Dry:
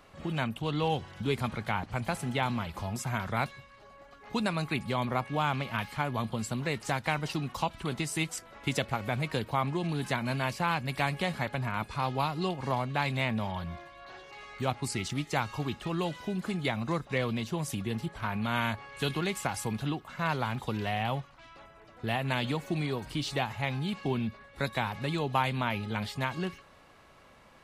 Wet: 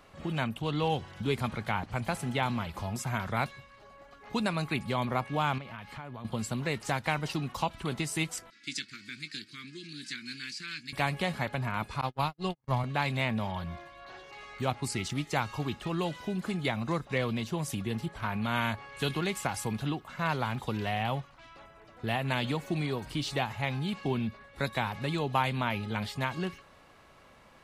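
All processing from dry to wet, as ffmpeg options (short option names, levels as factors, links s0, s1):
-filter_complex "[0:a]asettb=1/sr,asplit=3[s0][s1][s2];[s0]atrim=end=5.584[s3];[s1]atrim=start=5.58:end=6.25,asetpts=PTS-STARTPTS,afade=t=in:d=0.004:c=qsin,afade=t=out:st=0.666:d=0.004:c=qsin,highshelf=f=5700:g=-10.5,acompressor=threshold=0.01:ratio=4:attack=3.2:release=140:knee=1:detection=peak[s4];[s2]atrim=start=6.246[s5];[s3][s4]acrossfade=d=0.004:c1=hsin:c2=qsin[s6];[s6][s5]acrossfade=d=0.004:c1=qsin:c2=hsin,asettb=1/sr,asplit=3[s7][s8][s9];[s7]atrim=end=8.504[s10];[s8]atrim=start=8.5:end=10.93,asetpts=PTS-STARTPTS,afade=t=in:d=0.004:c=qsin,afade=t=out:st=2.426:d=0.004:c=qsin,asuperstop=centerf=740:order=8:qfactor=0.52,highpass=430,equalizer=f=450:t=q:w=4:g=-7,equalizer=f=1000:t=q:w=4:g=4,equalizer=f=2000:t=q:w=4:g=-5,equalizer=f=2900:t=q:w=4:g=-7,equalizer=f=4700:t=q:w=4:g=8,lowpass=f=8800:w=0.5412,lowpass=f=8800:w=1.3066,asplit=2[s11][s12];[s12]adelay=20,volume=0.224[s13];[s11][s13]amix=inputs=2:normalize=0,atrim=end_sample=107163[s14];[s9]atrim=start=10.926[s15];[s10][s14]acrossfade=d=0.004:c1=hsin:c2=qsin[s16];[s16][s15]acrossfade=d=0.004:c1=qsin:c2=hsin,asettb=1/sr,asplit=3[s17][s18][s19];[s17]atrim=end=12.014[s20];[s18]atrim=start=12.01:end=12.84,asetpts=PTS-STARTPTS,afade=t=in:d=0.004:c=qsin,afade=t=out:st=0.826:d=0.004:c=qsin,agate=range=0.00282:threshold=0.0282:ratio=16:release=100:detection=peak,asubboost=boost=11.5:cutoff=160[s21];[s19]atrim=start=12.836[s22];[s20][s21]acrossfade=d=0.004:c1=hsin:c2=qsin[s23];[s23][s22]acrossfade=d=0.004:c1=qsin:c2=hsin"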